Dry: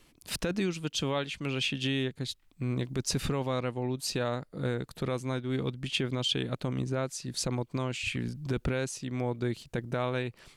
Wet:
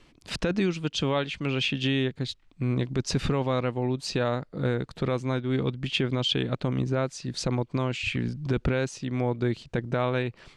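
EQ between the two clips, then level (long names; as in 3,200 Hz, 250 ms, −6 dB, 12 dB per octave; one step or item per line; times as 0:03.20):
high-frequency loss of the air 96 metres
+5.0 dB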